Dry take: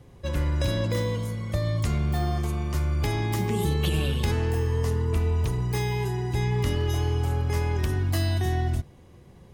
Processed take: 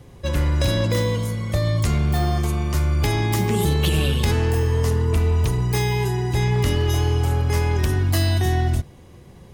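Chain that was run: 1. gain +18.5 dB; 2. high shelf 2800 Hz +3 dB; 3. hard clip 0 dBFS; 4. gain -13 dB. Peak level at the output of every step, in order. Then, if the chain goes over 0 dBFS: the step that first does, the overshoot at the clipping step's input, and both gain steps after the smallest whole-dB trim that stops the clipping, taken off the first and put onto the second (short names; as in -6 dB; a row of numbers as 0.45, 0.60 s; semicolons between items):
+4.0, +5.0, 0.0, -13.0 dBFS; step 1, 5.0 dB; step 1 +13.5 dB, step 4 -8 dB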